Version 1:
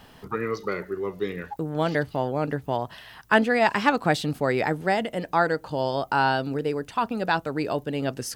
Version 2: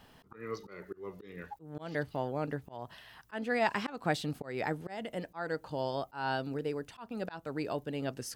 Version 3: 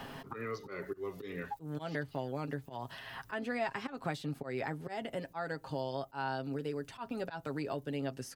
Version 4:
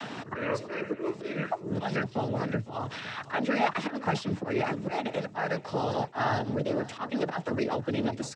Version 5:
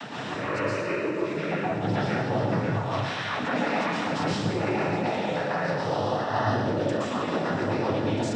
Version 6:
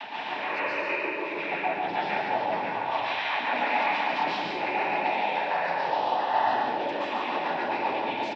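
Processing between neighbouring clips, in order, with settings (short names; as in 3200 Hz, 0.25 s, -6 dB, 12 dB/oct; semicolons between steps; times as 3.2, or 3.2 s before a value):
auto swell 0.219 s; gain -8.5 dB
in parallel at -1 dB: compressor, threshold -43 dBFS, peak gain reduction 17.5 dB; on the sum: comb 7.4 ms, depth 49%; three-band squash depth 70%; gain -6 dB
noise vocoder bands 12; feedback echo 0.509 s, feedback 33%, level -17 dB; gain +8.5 dB
limiter -24 dBFS, peak gain reduction 10.5 dB; plate-style reverb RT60 1.3 s, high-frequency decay 0.95×, pre-delay 0.105 s, DRR -6.5 dB
speaker cabinet 480–4200 Hz, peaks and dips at 490 Hz -8 dB, 880 Hz +8 dB, 1300 Hz -9 dB, 2400 Hz +7 dB; echo 0.144 s -4.5 dB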